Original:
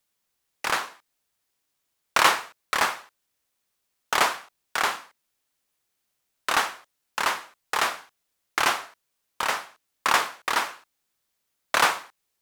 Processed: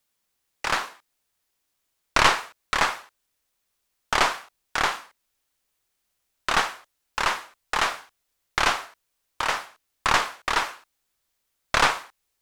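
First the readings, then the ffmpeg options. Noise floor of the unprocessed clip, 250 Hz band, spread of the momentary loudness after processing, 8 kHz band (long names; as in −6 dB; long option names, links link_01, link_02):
−78 dBFS, +2.5 dB, 13 LU, −1.5 dB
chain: -filter_complex "[0:a]asubboost=boost=2.5:cutoff=82,acrossover=split=8200[link_01][link_02];[link_02]acompressor=threshold=-49dB:ratio=4:attack=1:release=60[link_03];[link_01][link_03]amix=inputs=2:normalize=0,asoftclip=type=tanh:threshold=-5.5dB,aeval=exprs='0.447*(cos(1*acos(clip(val(0)/0.447,-1,1)))-cos(1*PI/2))+0.178*(cos(2*acos(clip(val(0)/0.447,-1,1)))-cos(2*PI/2))':channel_layout=same,volume=1dB"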